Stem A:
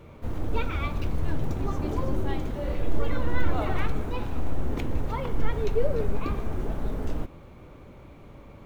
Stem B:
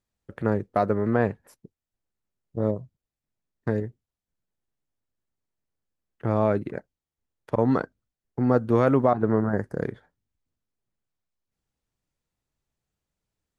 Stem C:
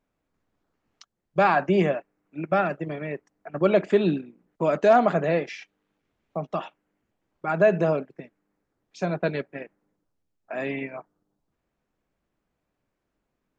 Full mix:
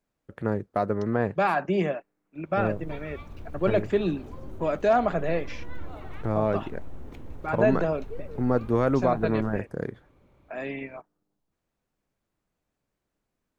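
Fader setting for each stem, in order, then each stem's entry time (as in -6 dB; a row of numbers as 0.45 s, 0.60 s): -13.5 dB, -3.0 dB, -4.0 dB; 2.35 s, 0.00 s, 0.00 s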